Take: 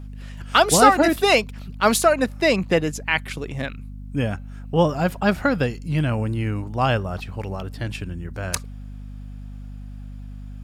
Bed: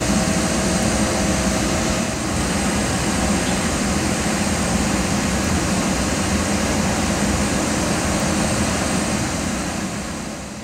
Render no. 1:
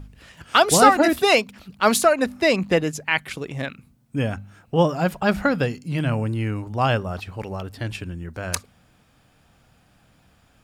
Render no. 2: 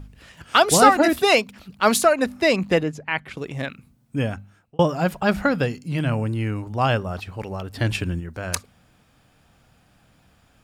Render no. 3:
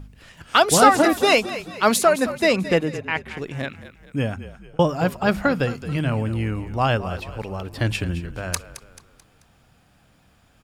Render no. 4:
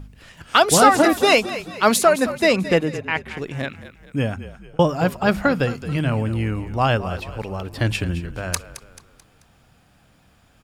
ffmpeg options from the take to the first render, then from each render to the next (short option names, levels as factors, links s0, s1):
-af "bandreject=f=50:t=h:w=4,bandreject=f=100:t=h:w=4,bandreject=f=150:t=h:w=4,bandreject=f=200:t=h:w=4,bandreject=f=250:t=h:w=4"
-filter_complex "[0:a]asettb=1/sr,asplit=3[s0][s1][s2];[s0]atrim=end=2.834[s3];[s1]atrim=start=2.83:end=3.37,asetpts=PTS-STARTPTS,afade=t=in:d=0.004:c=qsin,afade=t=out:st=0.536:d=0.004:c=qsin,lowpass=f=1600:p=1[s4];[s2]atrim=start=3.366[s5];[s3][s4]acrossfade=d=0.004:c1=hsin:c2=qsin[s6];[s6][s5]acrossfade=d=0.004:c1=qsin:c2=hsin,asplit=3[s7][s8][s9];[s7]afade=t=out:st=7.74:d=0.02[s10];[s8]acontrast=69,afade=t=in:st=7.74:d=0.02,afade=t=out:st=8.19:d=0.02[s11];[s9]afade=t=in:st=8.19:d=0.02[s12];[s10][s11][s12]amix=inputs=3:normalize=0,asplit=2[s13][s14];[s13]atrim=end=4.79,asetpts=PTS-STARTPTS,afade=t=out:st=4.23:d=0.56[s15];[s14]atrim=start=4.79,asetpts=PTS-STARTPTS,afade=t=in:d=0.004:c=hsin[s16];[s15][s16]concat=n=2:v=0:a=1"
-filter_complex "[0:a]asplit=5[s0][s1][s2][s3][s4];[s1]adelay=218,afreqshift=-43,volume=0.2[s5];[s2]adelay=436,afreqshift=-86,volume=0.0881[s6];[s3]adelay=654,afreqshift=-129,volume=0.0385[s7];[s4]adelay=872,afreqshift=-172,volume=0.017[s8];[s0][s5][s6][s7][s8]amix=inputs=5:normalize=0"
-af "volume=1.19,alimiter=limit=0.794:level=0:latency=1"